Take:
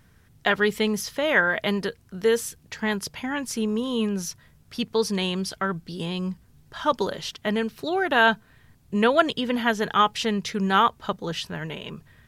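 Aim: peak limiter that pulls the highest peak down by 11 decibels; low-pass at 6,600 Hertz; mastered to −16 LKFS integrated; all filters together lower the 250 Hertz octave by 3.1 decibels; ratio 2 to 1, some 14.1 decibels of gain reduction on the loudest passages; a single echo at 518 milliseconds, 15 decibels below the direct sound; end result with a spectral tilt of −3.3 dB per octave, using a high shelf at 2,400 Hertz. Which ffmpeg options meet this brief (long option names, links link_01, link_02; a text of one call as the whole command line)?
ffmpeg -i in.wav -af "lowpass=6600,equalizer=frequency=250:width_type=o:gain=-4,highshelf=frequency=2400:gain=6,acompressor=threshold=-39dB:ratio=2,alimiter=level_in=1dB:limit=-24dB:level=0:latency=1,volume=-1dB,aecho=1:1:518:0.178,volume=20.5dB" out.wav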